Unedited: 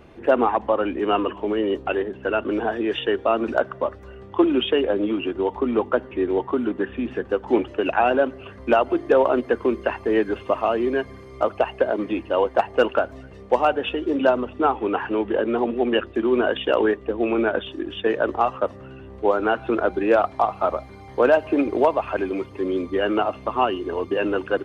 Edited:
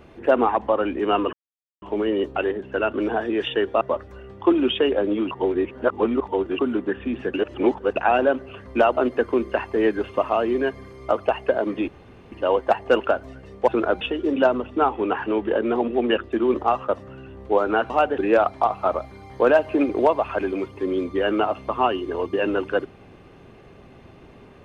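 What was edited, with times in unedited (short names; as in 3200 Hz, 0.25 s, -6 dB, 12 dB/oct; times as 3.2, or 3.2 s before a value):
1.33 insert silence 0.49 s
3.32–3.73 cut
5.23–6.51 reverse
7.26–7.88 reverse
8.89–9.29 cut
12.2 insert room tone 0.44 s
13.56–13.84 swap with 19.63–19.96
16.37–18.27 cut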